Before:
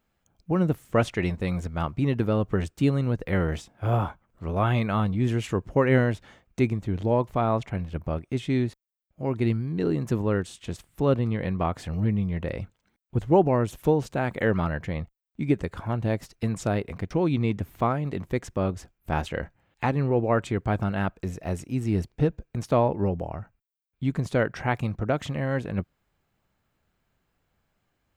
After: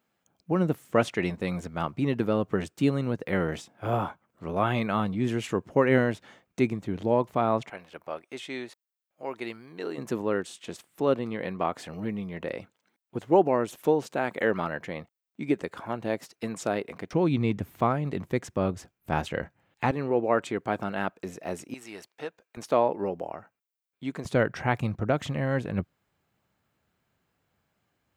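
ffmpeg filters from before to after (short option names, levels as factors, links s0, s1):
-af "asetnsamples=n=441:p=0,asendcmd='7.7 highpass f 580;9.98 highpass f 270;17.13 highpass f 110;19.91 highpass f 260;21.74 highpass f 810;22.57 highpass f 320;24.25 highpass f 84',highpass=170"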